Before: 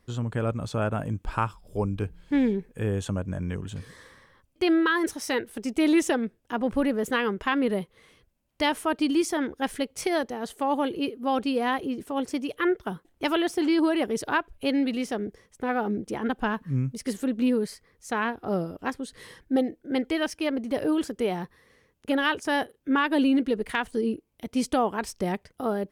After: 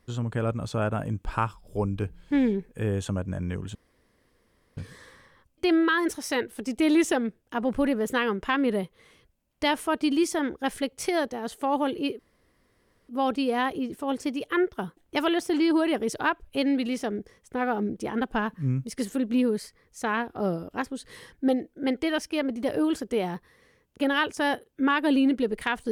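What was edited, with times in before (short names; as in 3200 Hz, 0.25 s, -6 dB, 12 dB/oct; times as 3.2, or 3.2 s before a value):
3.75 insert room tone 1.02 s
11.17 insert room tone 0.90 s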